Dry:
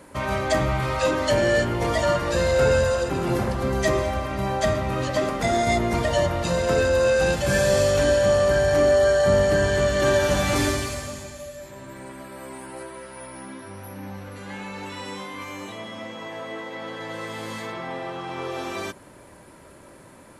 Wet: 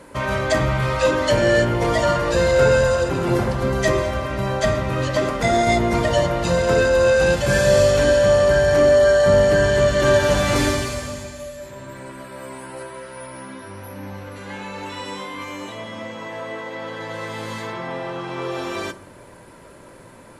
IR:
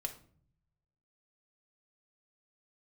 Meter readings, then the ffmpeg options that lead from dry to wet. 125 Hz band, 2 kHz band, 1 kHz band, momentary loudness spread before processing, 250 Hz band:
+4.0 dB, +4.0 dB, +3.0 dB, 19 LU, +3.5 dB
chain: -filter_complex "[0:a]highshelf=frequency=10000:gain=-6,asplit=2[link_01][link_02];[1:a]atrim=start_sample=2205,asetrate=33516,aresample=44100[link_03];[link_02][link_03]afir=irnorm=-1:irlink=0,volume=-5dB[link_04];[link_01][link_04]amix=inputs=2:normalize=0"

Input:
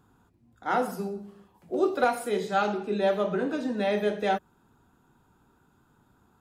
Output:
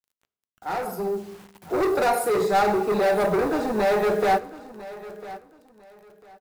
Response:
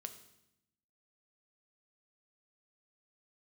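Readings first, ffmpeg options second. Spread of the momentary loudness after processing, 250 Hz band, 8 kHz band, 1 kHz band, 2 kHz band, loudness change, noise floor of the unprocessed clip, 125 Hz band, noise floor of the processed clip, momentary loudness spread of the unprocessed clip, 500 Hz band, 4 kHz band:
18 LU, +2.5 dB, +8.5 dB, +5.5 dB, +4.0 dB, +5.0 dB, −65 dBFS, +3.5 dB, below −85 dBFS, 9 LU, +5.5 dB, +3.0 dB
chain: -filter_complex "[0:a]adynamicequalizer=threshold=0.01:dfrequency=430:dqfactor=1.6:tfrequency=430:tqfactor=1.6:attack=5:release=100:ratio=0.375:range=2.5:mode=boostabove:tftype=bell,asoftclip=type=hard:threshold=-27dB,equalizer=frequency=250:width_type=o:width=0.33:gain=-8,equalizer=frequency=800:width_type=o:width=0.33:gain=6,equalizer=frequency=3150:width_type=o:width=0.33:gain=-10,equalizer=frequency=6300:width_type=o:width=0.33:gain=-3,equalizer=frequency=12500:width_type=o:width=0.33:gain=7,acrusher=bits=8:mix=0:aa=0.000001,asplit=2[link_01][link_02];[1:a]atrim=start_sample=2205[link_03];[link_02][link_03]afir=irnorm=-1:irlink=0,volume=-2.5dB[link_04];[link_01][link_04]amix=inputs=2:normalize=0,dynaudnorm=framelen=460:gausssize=5:maxgain=10dB,asplit=2[link_05][link_06];[link_06]aecho=0:1:1000|2000:0.141|0.0339[link_07];[link_05][link_07]amix=inputs=2:normalize=0,volume=-5.5dB"

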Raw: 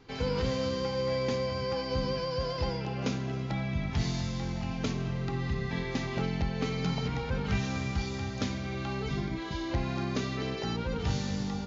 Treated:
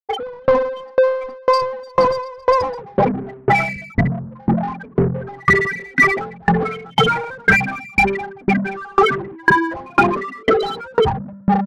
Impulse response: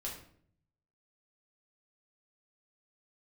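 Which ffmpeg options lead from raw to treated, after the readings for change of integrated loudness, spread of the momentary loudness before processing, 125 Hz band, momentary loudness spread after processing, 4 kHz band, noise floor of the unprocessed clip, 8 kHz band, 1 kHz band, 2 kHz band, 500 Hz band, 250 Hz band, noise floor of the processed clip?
+14.5 dB, 3 LU, +6.5 dB, 6 LU, +9.0 dB, −36 dBFS, can't be measured, +20.5 dB, +21.5 dB, +15.5 dB, +10.5 dB, −42 dBFS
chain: -filter_complex "[0:a]lowshelf=frequency=280:gain=-3.5,asplit=2[link_01][link_02];[link_02]adelay=143,lowpass=frequency=850:poles=1,volume=-16dB,asplit=2[link_03][link_04];[link_04]adelay=143,lowpass=frequency=850:poles=1,volume=0.37,asplit=2[link_05][link_06];[link_06]adelay=143,lowpass=frequency=850:poles=1,volume=0.37[link_07];[link_01][link_03][link_05][link_07]amix=inputs=4:normalize=0,asplit=2[link_08][link_09];[1:a]atrim=start_sample=2205,asetrate=25578,aresample=44100,adelay=138[link_10];[link_09][link_10]afir=irnorm=-1:irlink=0,volume=-18.5dB[link_11];[link_08][link_11]amix=inputs=2:normalize=0,asplit=2[link_12][link_13];[link_13]highpass=frequency=720:poles=1,volume=21dB,asoftclip=type=tanh:threshold=-20.5dB[link_14];[link_12][link_14]amix=inputs=2:normalize=0,lowpass=frequency=3300:poles=1,volume=-6dB,afftfilt=real='re*gte(hypot(re,im),0.126)':imag='im*gte(hypot(re,im),0.126)':win_size=1024:overlap=0.75,bandreject=frequency=60:width_type=h:width=6,bandreject=frequency=120:width_type=h:width=6,bandreject=frequency=180:width_type=h:width=6,apsyclip=34dB,asplit=2[link_15][link_16];[link_16]acontrast=71,volume=1dB[link_17];[link_15][link_17]amix=inputs=2:normalize=0,firequalizer=gain_entry='entry(140,0);entry(550,2);entry(1600,7);entry(2600,2)':delay=0.05:min_phase=1,aeval=exprs='val(0)*pow(10,-35*if(lt(mod(2*n/s,1),2*abs(2)/1000),1-mod(2*n/s,1)/(2*abs(2)/1000),(mod(2*n/s,1)-2*abs(2)/1000)/(1-2*abs(2)/1000))/20)':channel_layout=same,volume=-14.5dB"

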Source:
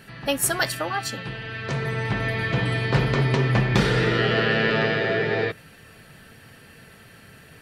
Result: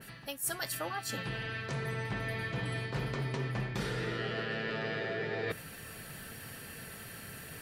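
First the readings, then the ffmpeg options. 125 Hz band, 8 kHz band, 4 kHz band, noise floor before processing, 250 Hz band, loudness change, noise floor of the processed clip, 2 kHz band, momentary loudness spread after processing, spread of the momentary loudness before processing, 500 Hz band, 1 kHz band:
−13.5 dB, −10.0 dB, −12.5 dB, −49 dBFS, −13.5 dB, −14.0 dB, −48 dBFS, −12.5 dB, 10 LU, 9 LU, −13.5 dB, −12.5 dB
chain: -af "aemphasis=mode=production:type=75kf,areverse,acompressor=threshold=-33dB:ratio=6,areverse,adynamicequalizer=threshold=0.00251:dfrequency=2200:dqfactor=0.7:tfrequency=2200:tqfactor=0.7:attack=5:release=100:ratio=0.375:range=3:mode=cutabove:tftype=highshelf"

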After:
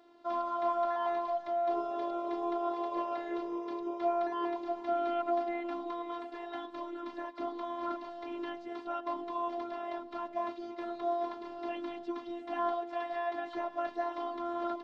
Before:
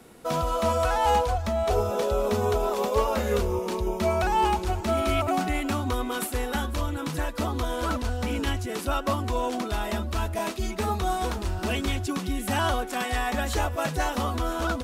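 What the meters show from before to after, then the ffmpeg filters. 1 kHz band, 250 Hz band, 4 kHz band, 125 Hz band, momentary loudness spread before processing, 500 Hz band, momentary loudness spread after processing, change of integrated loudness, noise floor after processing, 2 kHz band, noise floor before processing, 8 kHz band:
−7.0 dB, −8.0 dB, −18.0 dB, below −40 dB, 6 LU, −7.5 dB, 9 LU, −9.0 dB, −48 dBFS, −14.5 dB, −34 dBFS, below −30 dB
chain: -filter_complex "[0:a]acrossover=split=2600[link_01][link_02];[link_02]acompressor=threshold=-46dB:ratio=4:attack=1:release=60[link_03];[link_01][link_03]amix=inputs=2:normalize=0,lowshelf=frequency=240:gain=-10.5,bandreject=frequency=60:width_type=h:width=6,bandreject=frequency=120:width_type=h:width=6,bandreject=frequency=180:width_type=h:width=6,bandreject=frequency=240:width_type=h:width=6,areverse,acompressor=mode=upward:threshold=-44dB:ratio=2.5,areverse,highpass=180,equalizer=frequency=220:width_type=q:width=4:gain=8,equalizer=frequency=310:width_type=q:width=4:gain=5,equalizer=frequency=550:width_type=q:width=4:gain=3,equalizer=frequency=840:width_type=q:width=4:gain=9,equalizer=frequency=1500:width_type=q:width=4:gain=-4,equalizer=frequency=2500:width_type=q:width=4:gain=-6,lowpass=frequency=4300:width=0.5412,lowpass=frequency=4300:width=1.3066,afftfilt=real='hypot(re,im)*cos(PI*b)':imag='0':win_size=512:overlap=0.75,volume=-5.5dB"

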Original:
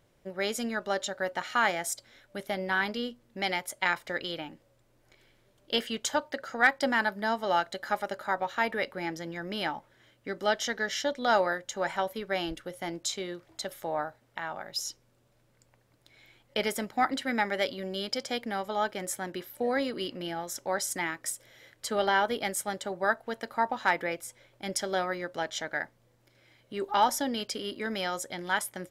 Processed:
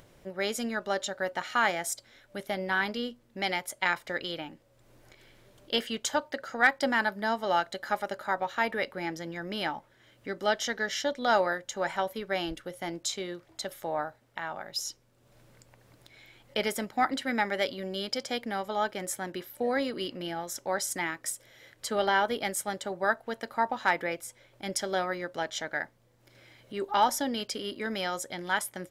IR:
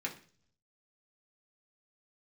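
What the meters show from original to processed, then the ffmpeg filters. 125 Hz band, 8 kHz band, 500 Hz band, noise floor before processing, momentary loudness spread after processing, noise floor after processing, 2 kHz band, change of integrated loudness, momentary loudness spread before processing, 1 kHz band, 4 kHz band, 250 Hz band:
0.0 dB, 0.0 dB, 0.0 dB, −67 dBFS, 12 LU, −64 dBFS, 0.0 dB, 0.0 dB, 12 LU, 0.0 dB, 0.0 dB, 0.0 dB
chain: -af "acompressor=mode=upward:threshold=-48dB:ratio=2.5"

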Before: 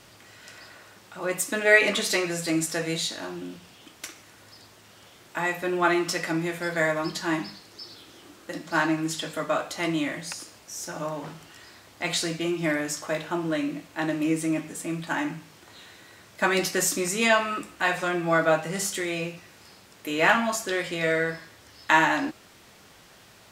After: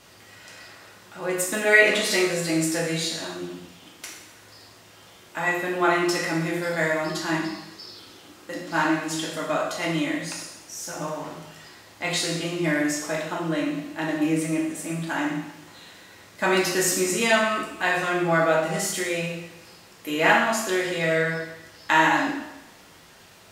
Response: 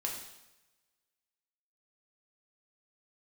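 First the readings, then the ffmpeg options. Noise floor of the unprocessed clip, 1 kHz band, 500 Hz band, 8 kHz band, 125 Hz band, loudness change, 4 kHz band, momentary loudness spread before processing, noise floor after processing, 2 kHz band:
−53 dBFS, +2.0 dB, +2.0 dB, +2.0 dB, +3.0 dB, +2.0 dB, +2.0 dB, 19 LU, −50 dBFS, +2.0 dB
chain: -filter_complex "[1:a]atrim=start_sample=2205[link_01];[0:a][link_01]afir=irnorm=-1:irlink=0"

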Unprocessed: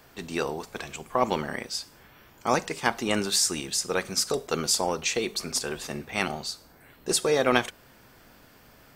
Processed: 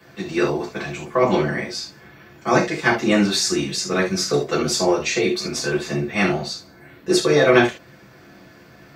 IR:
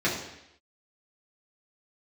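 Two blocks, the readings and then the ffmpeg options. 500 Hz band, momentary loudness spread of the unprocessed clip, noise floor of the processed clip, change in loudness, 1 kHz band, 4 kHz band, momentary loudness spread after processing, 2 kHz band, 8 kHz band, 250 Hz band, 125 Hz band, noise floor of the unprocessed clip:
+9.0 dB, 13 LU, −48 dBFS, +7.0 dB, +5.0 dB, +4.0 dB, 13 LU, +8.5 dB, +0.5 dB, +11.5 dB, +11.5 dB, −55 dBFS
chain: -filter_complex "[1:a]atrim=start_sample=2205,atrim=end_sample=3969[link_01];[0:a][link_01]afir=irnorm=-1:irlink=0,volume=-5dB"

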